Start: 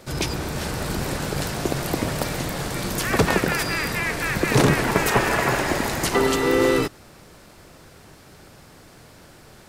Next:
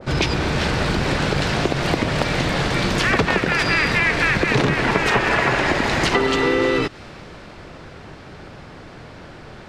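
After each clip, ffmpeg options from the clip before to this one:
-af "lowpass=3.4k,acompressor=threshold=-26dB:ratio=4,adynamicequalizer=threshold=0.00631:dfrequency=1800:dqfactor=0.7:tfrequency=1800:tqfactor=0.7:attack=5:release=100:ratio=0.375:range=3:mode=boostabove:tftype=highshelf,volume=9dB"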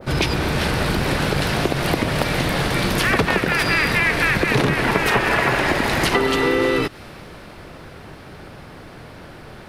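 -af "aexciter=amount=2.5:drive=9.9:freq=9.7k"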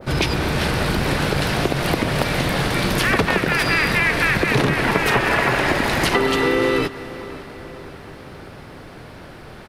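-filter_complex "[0:a]asplit=2[a][b];[b]adelay=540,lowpass=f=2.7k:p=1,volume=-16dB,asplit=2[c][d];[d]adelay=540,lowpass=f=2.7k:p=1,volume=0.55,asplit=2[e][f];[f]adelay=540,lowpass=f=2.7k:p=1,volume=0.55,asplit=2[g][h];[h]adelay=540,lowpass=f=2.7k:p=1,volume=0.55,asplit=2[i][j];[j]adelay=540,lowpass=f=2.7k:p=1,volume=0.55[k];[a][c][e][g][i][k]amix=inputs=6:normalize=0"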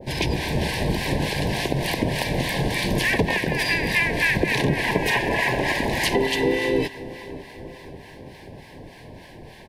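-filter_complex "[0:a]acrossover=split=850[a][b];[a]aeval=exprs='val(0)*(1-0.7/2+0.7/2*cos(2*PI*3.4*n/s))':c=same[c];[b]aeval=exprs='val(0)*(1-0.7/2-0.7/2*cos(2*PI*3.4*n/s))':c=same[d];[c][d]amix=inputs=2:normalize=0,asuperstop=centerf=1300:order=12:qfactor=2.5"

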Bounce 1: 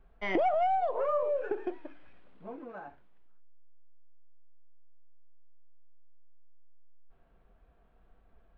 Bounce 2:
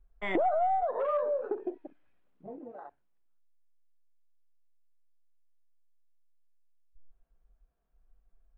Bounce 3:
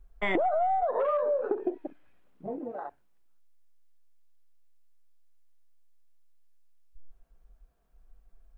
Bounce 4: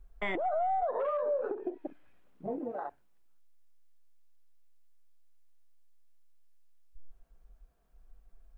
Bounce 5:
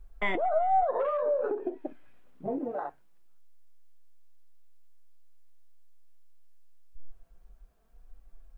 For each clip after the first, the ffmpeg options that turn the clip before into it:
-af "afwtdn=0.01"
-af "acompressor=threshold=-33dB:ratio=4,volume=8dB"
-af "alimiter=level_in=0.5dB:limit=-24dB:level=0:latency=1:release=267,volume=-0.5dB"
-af "flanger=delay=3.3:depth=5.2:regen=70:speed=0.24:shape=triangular,volume=8dB"

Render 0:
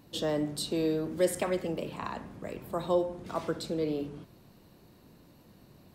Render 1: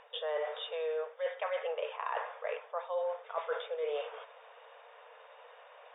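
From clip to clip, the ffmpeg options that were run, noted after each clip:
-af "afftfilt=real='re*between(b*sr/4096,440,3700)':imag='im*between(b*sr/4096,440,3700)':win_size=4096:overlap=0.75,equalizer=f=1.3k:w=0.6:g=6,areverse,acompressor=threshold=-39dB:ratio=12,areverse,volume=7dB"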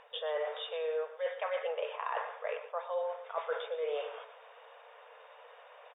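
-af "aecho=1:1:119:0.237"

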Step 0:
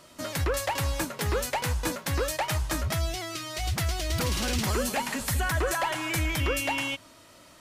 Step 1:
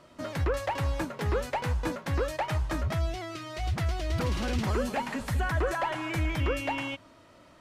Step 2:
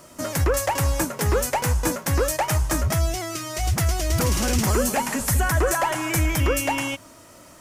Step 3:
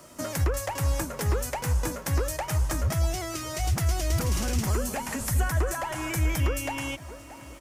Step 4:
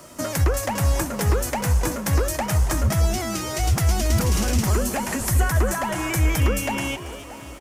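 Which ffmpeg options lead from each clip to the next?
-af "lowpass=f=1.6k:p=1"
-af "aexciter=amount=6:drive=3.5:freq=5.5k,volume=7dB"
-filter_complex "[0:a]asplit=2[a][b];[b]adelay=626,lowpass=f=2.2k:p=1,volume=-19.5dB,asplit=2[c][d];[d]adelay=626,lowpass=f=2.2k:p=1,volume=0.5,asplit=2[e][f];[f]adelay=626,lowpass=f=2.2k:p=1,volume=0.5,asplit=2[g][h];[h]adelay=626,lowpass=f=2.2k:p=1,volume=0.5[i];[a][c][e][g][i]amix=inputs=5:normalize=0,acrossover=split=130[j][k];[k]acompressor=threshold=-26dB:ratio=6[l];[j][l]amix=inputs=2:normalize=0,volume=-2.5dB"
-filter_complex "[0:a]asplit=4[a][b][c][d];[b]adelay=279,afreqshift=140,volume=-14.5dB[e];[c]adelay=558,afreqshift=280,volume=-23.4dB[f];[d]adelay=837,afreqshift=420,volume=-32.2dB[g];[a][e][f][g]amix=inputs=4:normalize=0,volume=5.5dB"

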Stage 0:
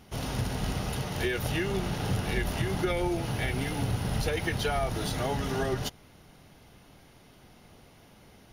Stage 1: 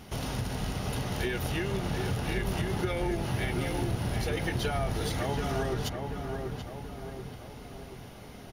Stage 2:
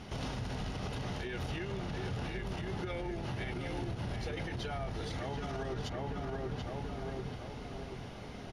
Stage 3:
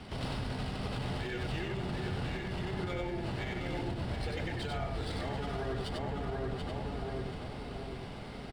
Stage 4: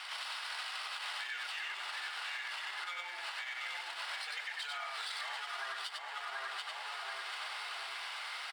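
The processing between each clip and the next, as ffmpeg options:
-filter_complex "[0:a]acompressor=threshold=-42dB:ratio=2,asplit=2[a][b];[b]adelay=733,lowpass=f=1.6k:p=1,volume=-4dB,asplit=2[c][d];[d]adelay=733,lowpass=f=1.6k:p=1,volume=0.53,asplit=2[e][f];[f]adelay=733,lowpass=f=1.6k:p=1,volume=0.53,asplit=2[g][h];[h]adelay=733,lowpass=f=1.6k:p=1,volume=0.53,asplit=2[i][j];[j]adelay=733,lowpass=f=1.6k:p=1,volume=0.53,asplit=2[k][l];[l]adelay=733,lowpass=f=1.6k:p=1,volume=0.53,asplit=2[m][n];[n]adelay=733,lowpass=f=1.6k:p=1,volume=0.53[o];[a][c][e][g][i][k][m][o]amix=inputs=8:normalize=0,volume=6dB"
-af "lowpass=6k,acompressor=threshold=-32dB:ratio=6,alimiter=level_in=6.5dB:limit=-24dB:level=0:latency=1:release=55,volume=-6.5dB,volume=1dB"
-filter_complex "[0:a]highshelf=f=6k:t=q:w=3:g=-8.5,acrossover=split=220|590|3300[a][b][c][d];[d]aeval=exprs='max(val(0),0)':c=same[e];[a][b][c][e]amix=inputs=4:normalize=0,aecho=1:1:94:0.708"
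-af "highpass=f=1.1k:w=0.5412,highpass=f=1.1k:w=1.3066,alimiter=level_in=17dB:limit=-24dB:level=0:latency=1:release=344,volume=-17dB,volume=10.5dB"

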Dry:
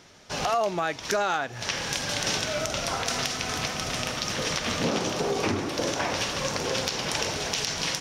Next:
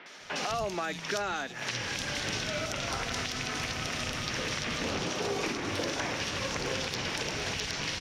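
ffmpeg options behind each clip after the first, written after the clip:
-filter_complex "[0:a]equalizer=f=2.4k:t=o:w=2.1:g=11,acrossover=split=380|4500[a][b][c];[a]acompressor=threshold=-33dB:ratio=4[d];[b]acompressor=threshold=-34dB:ratio=4[e];[c]acompressor=threshold=-41dB:ratio=4[f];[d][e][f]amix=inputs=3:normalize=0,acrossover=split=180|3000[g][h][i];[i]adelay=60[j];[g]adelay=200[k];[k][h][j]amix=inputs=3:normalize=0"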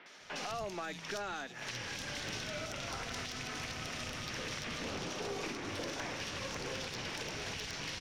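-af "aeval=exprs='(tanh(15.8*val(0)+0.25)-tanh(0.25))/15.8':c=same,volume=-6dB"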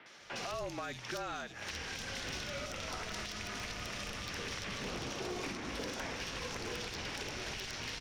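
-af "afreqshift=-42,aeval=exprs='0.0562*(cos(1*acos(clip(val(0)/0.0562,-1,1)))-cos(1*PI/2))+0.00562*(cos(3*acos(clip(val(0)/0.0562,-1,1)))-cos(3*PI/2))':c=same,aeval=exprs='0.0251*(abs(mod(val(0)/0.0251+3,4)-2)-1)':c=same,volume=2.5dB"

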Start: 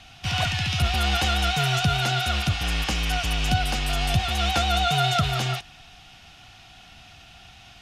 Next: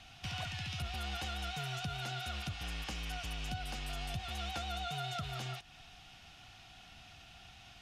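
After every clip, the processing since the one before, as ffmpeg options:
-af "acompressor=threshold=-34dB:ratio=2.5,volume=-7.5dB"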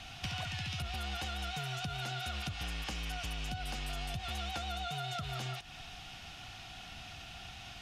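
-af "acompressor=threshold=-43dB:ratio=6,volume=7.5dB"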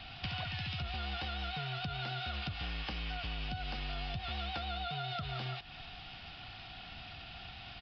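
-af "aresample=11025,aresample=44100"

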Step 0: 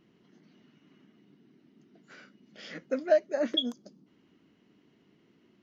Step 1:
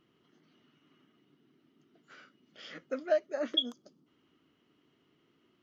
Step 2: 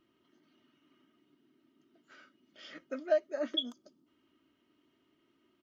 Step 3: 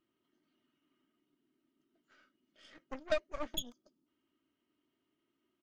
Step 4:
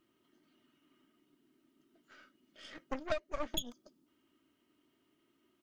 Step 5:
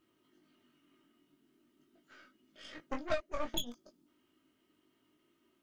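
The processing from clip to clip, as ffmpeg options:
-af "equalizer=f=200:t=o:w=0.33:g=-9,equalizer=f=1.25k:t=o:w=0.33:g=8,equalizer=f=3.15k:t=o:w=0.33:g=6,volume=-5dB"
-af "aecho=1:1:3.2:0.5,volume=-3.5dB"
-af "aeval=exprs='0.141*(cos(1*acos(clip(val(0)/0.141,-1,1)))-cos(1*PI/2))+0.0251*(cos(3*acos(clip(val(0)/0.141,-1,1)))-cos(3*PI/2))+0.02*(cos(8*acos(clip(val(0)/0.141,-1,1)))-cos(8*PI/2))':c=same,volume=-3dB"
-af "acompressor=threshold=-38dB:ratio=10,volume=7.5dB"
-af "flanger=delay=19:depth=2.3:speed=0.42,volume=4dB"

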